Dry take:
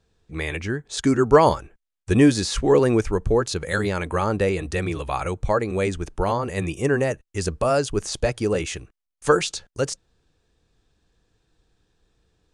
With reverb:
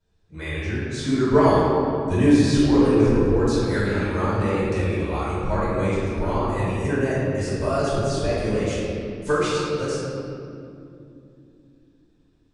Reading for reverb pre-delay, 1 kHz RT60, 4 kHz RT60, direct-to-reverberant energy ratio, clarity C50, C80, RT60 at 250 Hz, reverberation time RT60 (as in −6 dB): 3 ms, 2.3 s, 1.5 s, −12.5 dB, −4.0 dB, −1.0 dB, 4.8 s, 2.9 s